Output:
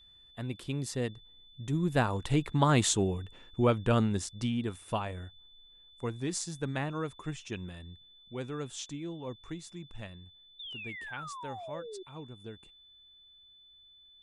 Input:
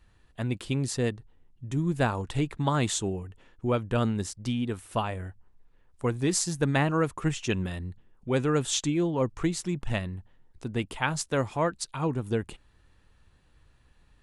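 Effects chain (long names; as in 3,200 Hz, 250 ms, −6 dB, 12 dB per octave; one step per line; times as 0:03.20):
source passing by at 0:03.14, 8 m/s, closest 8.1 metres
sound drawn into the spectrogram fall, 0:10.59–0:12.03, 360–3,700 Hz −45 dBFS
steady tone 3,500 Hz −58 dBFS
level +2 dB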